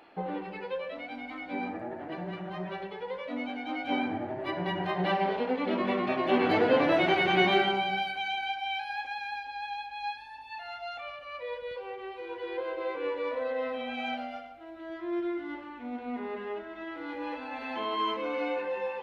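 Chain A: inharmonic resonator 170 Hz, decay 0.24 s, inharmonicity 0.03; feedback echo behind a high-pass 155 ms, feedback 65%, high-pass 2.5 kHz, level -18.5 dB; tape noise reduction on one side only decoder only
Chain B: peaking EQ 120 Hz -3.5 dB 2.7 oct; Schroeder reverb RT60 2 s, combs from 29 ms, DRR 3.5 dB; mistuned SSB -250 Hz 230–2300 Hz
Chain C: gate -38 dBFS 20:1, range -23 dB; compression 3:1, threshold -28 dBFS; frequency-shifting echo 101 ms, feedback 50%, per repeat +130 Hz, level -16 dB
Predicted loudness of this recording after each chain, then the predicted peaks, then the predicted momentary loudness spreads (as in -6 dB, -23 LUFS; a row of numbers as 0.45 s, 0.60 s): -41.0 LUFS, -32.5 LUFS, -34.0 LUFS; -22.0 dBFS, -12.0 dBFS, -17.0 dBFS; 18 LU, 16 LU, 14 LU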